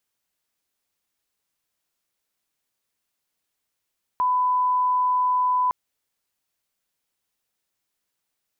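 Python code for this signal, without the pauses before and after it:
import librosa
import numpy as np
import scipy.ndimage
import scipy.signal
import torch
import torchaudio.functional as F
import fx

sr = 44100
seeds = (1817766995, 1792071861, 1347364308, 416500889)

y = fx.lineup_tone(sr, length_s=1.51, level_db=-18.0)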